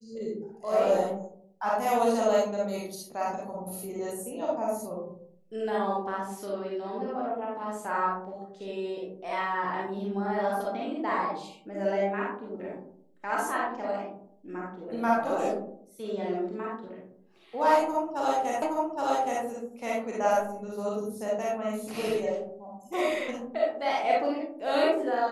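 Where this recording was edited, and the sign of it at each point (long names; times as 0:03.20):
0:18.62: the same again, the last 0.82 s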